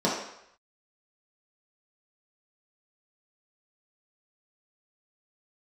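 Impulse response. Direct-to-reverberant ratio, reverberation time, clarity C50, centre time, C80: −6.5 dB, 0.75 s, 2.5 dB, 49 ms, 6.0 dB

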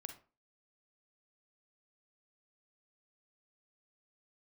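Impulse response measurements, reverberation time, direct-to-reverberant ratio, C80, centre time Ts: 0.35 s, 6.0 dB, 16.0 dB, 13 ms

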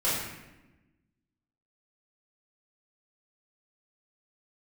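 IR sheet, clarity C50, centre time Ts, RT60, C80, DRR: 0.0 dB, 77 ms, 1.0 s, 3.0 dB, −12.0 dB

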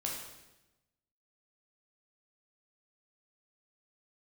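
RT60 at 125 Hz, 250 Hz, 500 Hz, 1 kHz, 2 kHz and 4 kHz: 1.3, 1.2, 1.0, 0.95, 0.95, 0.95 seconds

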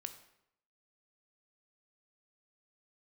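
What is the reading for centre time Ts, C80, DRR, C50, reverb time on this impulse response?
9 ms, 14.0 dB, 8.5 dB, 11.5 dB, 0.75 s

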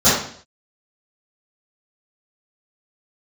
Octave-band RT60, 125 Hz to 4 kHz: 0.65, 0.55, 0.55, 0.55, 0.55, 0.55 seconds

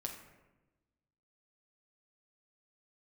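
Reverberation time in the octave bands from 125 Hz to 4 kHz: 1.6, 1.4, 1.2, 1.0, 0.90, 0.60 seconds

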